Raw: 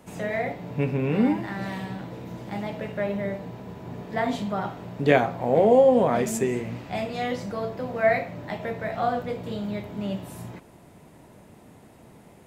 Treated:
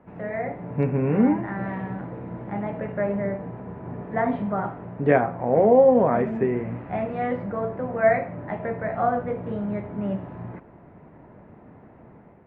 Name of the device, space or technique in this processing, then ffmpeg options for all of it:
action camera in a waterproof case: -af "lowpass=frequency=1900:width=0.5412,lowpass=frequency=1900:width=1.3066,dynaudnorm=framelen=200:gausssize=5:maxgain=5dB,volume=-2.5dB" -ar 48000 -c:a aac -b:a 128k

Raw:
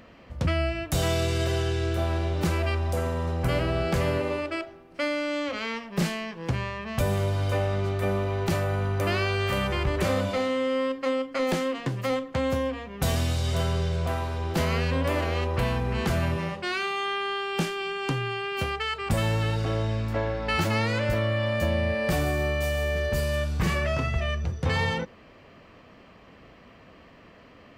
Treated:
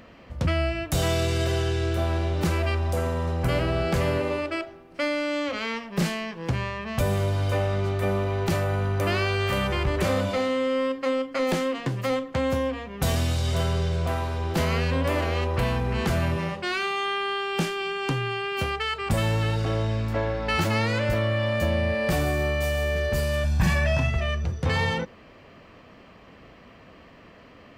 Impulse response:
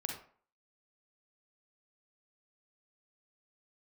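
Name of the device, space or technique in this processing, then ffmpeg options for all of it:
parallel distortion: -filter_complex "[0:a]asettb=1/sr,asplit=3[link_01][link_02][link_03];[link_01]atrim=end=23.444[link_04];[link_02]atrim=start=23.44:end=24.1,asetpts=PTS-STARTPTS,afade=type=in:duration=0.004:curve=qsin,afade=type=out:start_time=0.656:duration=0.004:curve=qsin,aecho=1:1:1.2:0.67,atrim=end_sample=29106[link_05];[link_03]atrim=start=24.096[link_06];[link_04][link_05]acrossfade=duration=0.004:curve1=hsin:curve2=qsin[link_07];[link_07][link_06]acrossfade=duration=0.004:curve1=qsin:curve2=hsin,asplit=2[link_08][link_09];[link_09]asoftclip=type=hard:threshold=-26dB,volume=-12.5dB[link_10];[link_08][link_10]amix=inputs=2:normalize=0"

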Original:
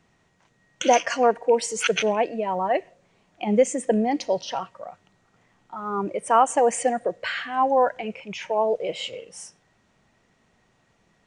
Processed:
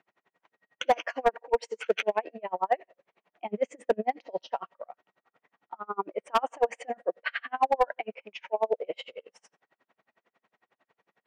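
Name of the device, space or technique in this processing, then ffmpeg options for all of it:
helicopter radio: -af "highpass=400,lowpass=2600,aeval=exprs='val(0)*pow(10,-37*(0.5-0.5*cos(2*PI*11*n/s))/20)':channel_layout=same,asoftclip=type=hard:threshold=-17.5dB,volume=2.5dB"

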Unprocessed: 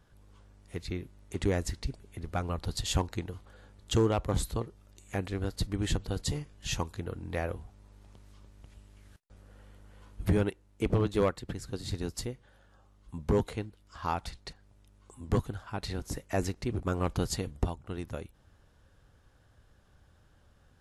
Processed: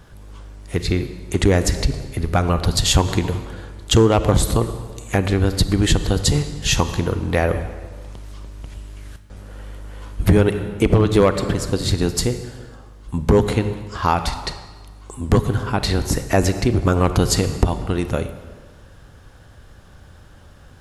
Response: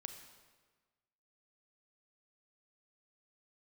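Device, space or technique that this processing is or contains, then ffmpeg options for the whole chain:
ducked reverb: -filter_complex "[0:a]asplit=3[link_01][link_02][link_03];[1:a]atrim=start_sample=2205[link_04];[link_02][link_04]afir=irnorm=-1:irlink=0[link_05];[link_03]apad=whole_len=917399[link_06];[link_05][link_06]sidechaincompress=threshold=-31dB:ratio=8:attack=16:release=163,volume=9.5dB[link_07];[link_01][link_07]amix=inputs=2:normalize=0,volume=8dB"

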